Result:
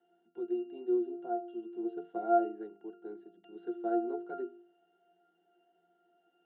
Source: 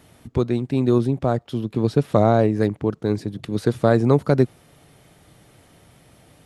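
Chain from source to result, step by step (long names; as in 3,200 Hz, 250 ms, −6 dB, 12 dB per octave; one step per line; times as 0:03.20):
Chebyshev band-pass filter 280–3,500 Hz, order 4
harmonic and percussive parts rebalanced harmonic +4 dB
mains-hum notches 50/100/150/200/250/300/350/400/450 Hz
resonances in every octave F, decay 0.35 s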